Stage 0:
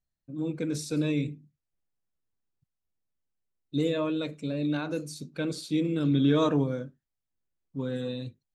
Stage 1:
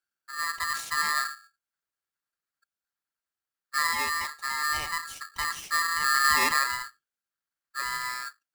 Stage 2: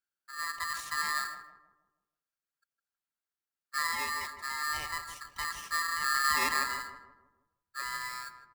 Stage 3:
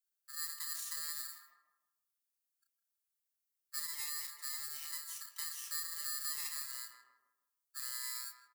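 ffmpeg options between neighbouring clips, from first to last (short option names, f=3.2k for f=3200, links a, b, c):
-af "highpass=45,aeval=exprs='val(0)*sgn(sin(2*PI*1500*n/s))':c=same"
-filter_complex "[0:a]asplit=2[a][b];[b]adelay=159,lowpass=f=980:p=1,volume=-6dB,asplit=2[c][d];[d]adelay=159,lowpass=f=980:p=1,volume=0.5,asplit=2[e][f];[f]adelay=159,lowpass=f=980:p=1,volume=0.5,asplit=2[g][h];[h]adelay=159,lowpass=f=980:p=1,volume=0.5,asplit=2[i][j];[j]adelay=159,lowpass=f=980:p=1,volume=0.5,asplit=2[k][l];[l]adelay=159,lowpass=f=980:p=1,volume=0.5[m];[a][c][e][g][i][k][m]amix=inputs=7:normalize=0,volume=-5.5dB"
-filter_complex "[0:a]acrossover=split=170|2500[a][b][c];[a]acompressor=threshold=-60dB:ratio=4[d];[b]acompressor=threshold=-45dB:ratio=4[e];[c]acompressor=threshold=-41dB:ratio=4[f];[d][e][f]amix=inputs=3:normalize=0,aderivative,asplit=2[g][h];[h]adelay=32,volume=-5dB[i];[g][i]amix=inputs=2:normalize=0,volume=2dB"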